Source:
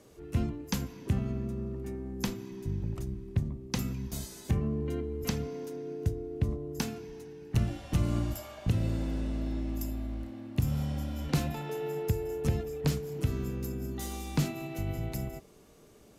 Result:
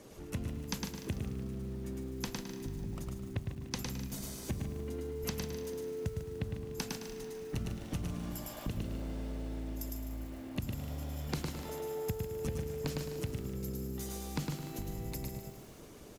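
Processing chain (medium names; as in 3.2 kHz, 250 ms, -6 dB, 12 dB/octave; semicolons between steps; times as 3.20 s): harmonic-percussive split harmonic -12 dB; feedback delay 107 ms, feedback 26%, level -3 dB; compression 2.5:1, threshold -49 dBFS, peak gain reduction 16 dB; bit-crushed delay 148 ms, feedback 55%, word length 10-bit, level -9.5 dB; trim +8 dB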